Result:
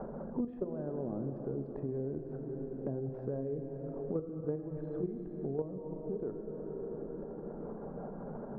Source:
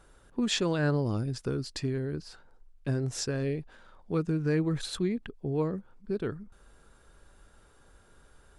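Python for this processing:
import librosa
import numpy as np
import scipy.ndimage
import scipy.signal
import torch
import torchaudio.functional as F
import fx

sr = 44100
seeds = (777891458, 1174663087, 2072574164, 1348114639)

p1 = fx.peak_eq(x, sr, hz=97.0, db=-14.5, octaves=0.75)
p2 = 10.0 ** (-28.0 / 20.0) * np.tanh(p1 / 10.0 ** (-28.0 / 20.0))
p3 = p1 + F.gain(torch.from_numpy(p2), -11.0).numpy()
p4 = fx.dereverb_blind(p3, sr, rt60_s=0.5)
p5 = fx.level_steps(p4, sr, step_db=13)
p6 = fx.dmg_noise_band(p5, sr, seeds[0], low_hz=140.0, high_hz=240.0, level_db=-70.0)
p7 = fx.ladder_lowpass(p6, sr, hz=830.0, resonance_pct=35)
p8 = fx.rev_plate(p7, sr, seeds[1], rt60_s=3.3, hf_ratio=0.95, predelay_ms=0, drr_db=5.0)
p9 = fx.band_squash(p8, sr, depth_pct=100)
y = F.gain(torch.from_numpy(p9), 6.0).numpy()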